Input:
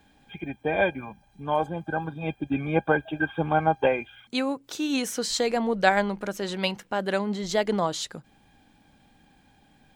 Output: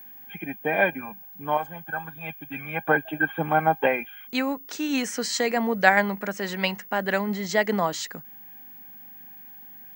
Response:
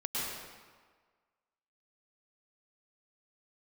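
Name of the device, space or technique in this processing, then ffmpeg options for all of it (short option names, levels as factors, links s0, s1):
old television with a line whistle: -filter_complex "[0:a]asettb=1/sr,asplit=3[s0][s1][s2];[s0]atrim=end=1.574[s3];[s1]atrim=start=1.57:end=2.85,asetpts=PTS-STARTPTS,afade=t=in:d=0.004:c=qsin,afade=t=out:st=1.276:d=0.004:c=qsin,equalizer=f=320:w=0.63:g=-13[s4];[s2]atrim=start=2.846[s5];[s3][s4]acrossfade=d=0.004:c1=hsin:c2=qsin[s6];[s6][s5]acrossfade=d=0.004:c1=qsin:c2=hsin,highpass=f=160:w=0.5412,highpass=f=160:w=1.3066,equalizer=f=350:t=q:w=4:g=-5,equalizer=f=520:t=q:w=4:g=-3,equalizer=f=1900:t=q:w=4:g=8,equalizer=f=3600:t=q:w=4:g=-7,lowpass=f=8400:w=0.5412,lowpass=f=8400:w=1.3066,aeval=exprs='val(0)+0.00631*sin(2*PI*15625*n/s)':c=same,volume=1.26"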